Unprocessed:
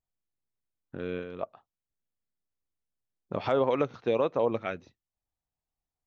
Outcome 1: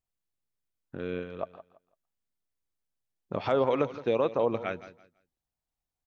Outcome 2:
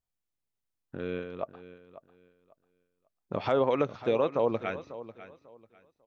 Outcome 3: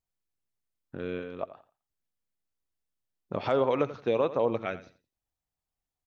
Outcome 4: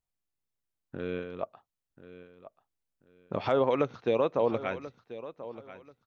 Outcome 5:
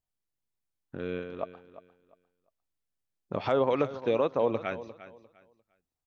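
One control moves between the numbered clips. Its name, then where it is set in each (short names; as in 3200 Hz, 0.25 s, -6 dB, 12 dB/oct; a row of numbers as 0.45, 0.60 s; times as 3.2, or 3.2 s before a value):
feedback echo, time: 167, 545, 86, 1036, 350 ms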